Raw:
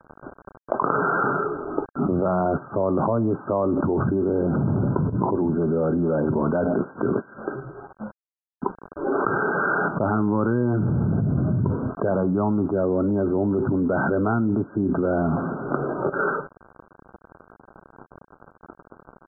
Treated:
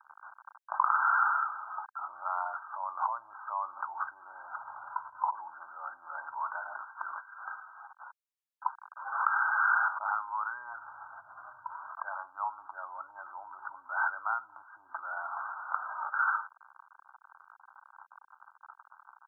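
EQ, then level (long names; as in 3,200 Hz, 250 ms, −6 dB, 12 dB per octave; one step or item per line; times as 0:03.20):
elliptic high-pass filter 890 Hz, stop band 50 dB
−1.5 dB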